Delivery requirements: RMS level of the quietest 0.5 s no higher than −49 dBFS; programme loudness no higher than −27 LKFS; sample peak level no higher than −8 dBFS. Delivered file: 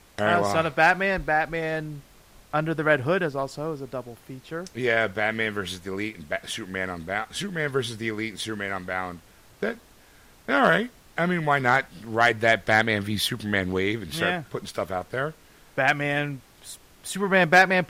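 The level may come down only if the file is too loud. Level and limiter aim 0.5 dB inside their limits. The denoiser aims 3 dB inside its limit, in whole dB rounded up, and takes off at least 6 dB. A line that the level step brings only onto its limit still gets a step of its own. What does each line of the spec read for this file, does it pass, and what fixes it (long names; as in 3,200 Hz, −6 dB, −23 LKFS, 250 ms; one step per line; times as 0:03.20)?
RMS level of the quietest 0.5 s −53 dBFS: in spec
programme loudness −25.0 LKFS: out of spec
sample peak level −6.0 dBFS: out of spec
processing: level −2.5 dB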